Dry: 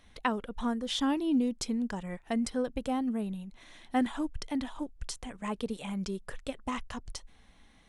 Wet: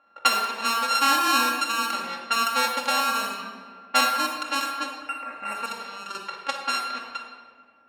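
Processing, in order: sample sorter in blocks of 32 samples; 4.96–5.68 spectral repair 2800–7500 Hz both; low-pass opened by the level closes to 1100 Hz, open at -28 dBFS; HPF 790 Hz 12 dB/oct; bell 3700 Hz +2 dB 0.52 oct; 5.44–6.15 level quantiser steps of 10 dB; shoebox room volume 1700 m³, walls mixed, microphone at 2.3 m; gain +8 dB

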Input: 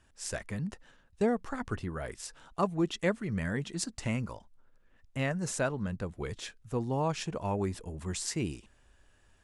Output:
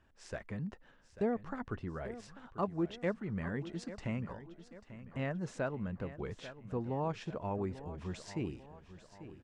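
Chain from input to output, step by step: low shelf 120 Hz -5 dB; in parallel at -2 dB: compressor, threshold -42 dBFS, peak gain reduction 17.5 dB; on the sum: tape spacing loss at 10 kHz 24 dB; feedback echo 0.842 s, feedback 47%, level -14 dB; gain -4.5 dB

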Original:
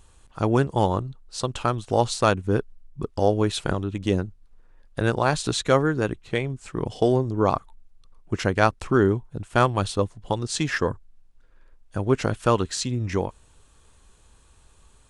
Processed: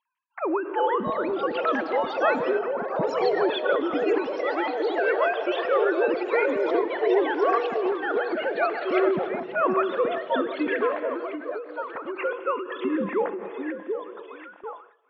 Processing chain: sine-wave speech; reverse; compressor 6:1, threshold -27 dBFS, peak gain reduction 14 dB; reverse; low shelf 200 Hz -5.5 dB; on a send: delay with a stepping band-pass 0.736 s, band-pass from 430 Hz, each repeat 0.7 oct, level -3 dB; on the sum: non-linear reverb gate 0.44 s flat, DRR 11 dB; gate with hold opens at -40 dBFS; echoes that change speed 0.441 s, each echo +4 st, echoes 3, each echo -6 dB; air absorption 100 m; ending taper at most 110 dB/s; gain +7 dB

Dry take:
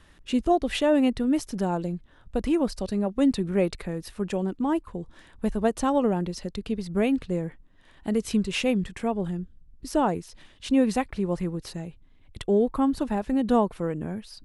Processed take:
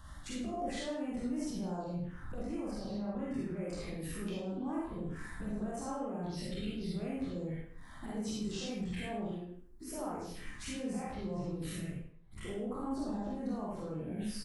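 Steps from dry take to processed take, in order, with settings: spectral dilation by 60 ms; 2.71–3.57 graphic EQ 125/2000/8000 Hz +5/+8/-11 dB; envelope phaser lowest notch 400 Hz, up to 4000 Hz, full sweep at -18 dBFS; compressor 6:1, threshold -34 dBFS, peak gain reduction 18.5 dB; limiter -34.5 dBFS, peak gain reduction 11 dB; 9.27–9.91 resonant low shelf 230 Hz -12.5 dB, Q 1.5; echo 0.106 s -15 dB; 11.87–12.48 dip -17 dB, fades 0.25 s; reverb RT60 0.60 s, pre-delay 39 ms, DRR -4.5 dB; gain -2 dB

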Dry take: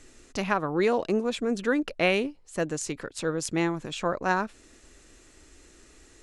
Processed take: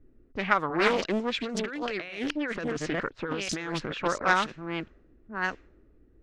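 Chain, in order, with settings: reverse delay 0.697 s, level -5.5 dB; band shelf 2900 Hz +8.5 dB 2.6 oct; low-pass opened by the level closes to 300 Hz, open at -18 dBFS; 1.43–3.93 negative-ratio compressor -30 dBFS, ratio -1; Doppler distortion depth 0.39 ms; gain -2.5 dB

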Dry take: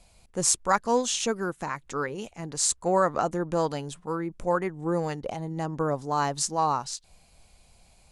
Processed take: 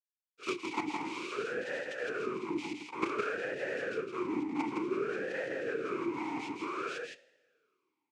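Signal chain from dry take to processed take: 0.69–1.3 spectral contrast lowered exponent 0.58; in parallel at -1.5 dB: compressor 12:1, threshold -33 dBFS, peak gain reduction 17.5 dB; on the sum: dispersion lows, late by 0.114 s, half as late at 1000 Hz; companded quantiser 2-bit; noise vocoder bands 3; on a send: echo 0.163 s -4 dB; on the sum: two-slope reverb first 0.79 s, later 3.5 s, from -20 dB, DRR 15.5 dB; vowel sweep e-u 0.55 Hz

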